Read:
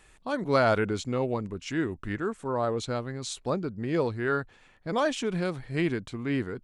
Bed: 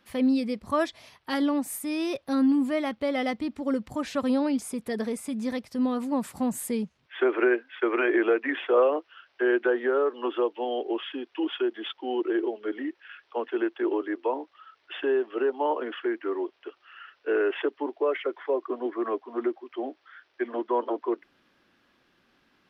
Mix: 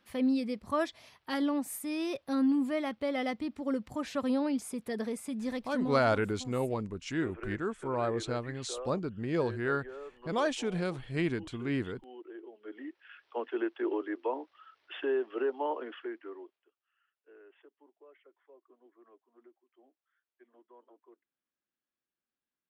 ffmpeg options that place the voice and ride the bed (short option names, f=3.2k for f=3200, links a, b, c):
-filter_complex "[0:a]adelay=5400,volume=-3.5dB[a];[1:a]volume=10dB,afade=t=out:st=5.64:d=0.53:silence=0.16788,afade=t=in:st=12.49:d=0.82:silence=0.177828,afade=t=out:st=15.49:d=1.18:silence=0.0473151[b];[a][b]amix=inputs=2:normalize=0"